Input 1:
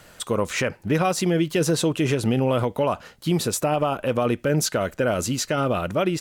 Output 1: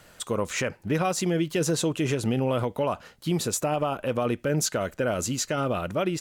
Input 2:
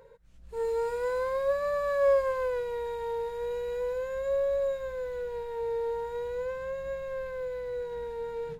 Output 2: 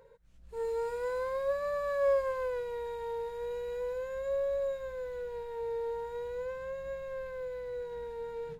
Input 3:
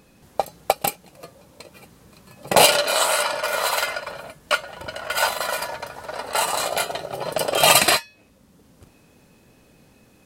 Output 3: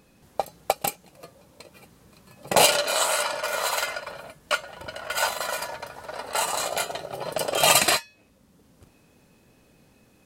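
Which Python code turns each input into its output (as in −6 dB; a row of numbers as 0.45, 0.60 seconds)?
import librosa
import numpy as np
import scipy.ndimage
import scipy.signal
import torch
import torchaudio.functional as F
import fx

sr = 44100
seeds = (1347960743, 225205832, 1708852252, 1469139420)

y = fx.dynamic_eq(x, sr, hz=6900.0, q=3.6, threshold_db=-45.0, ratio=4.0, max_db=5)
y = y * 10.0 ** (-4.0 / 20.0)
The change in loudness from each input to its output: −4.0, −4.0, −3.5 LU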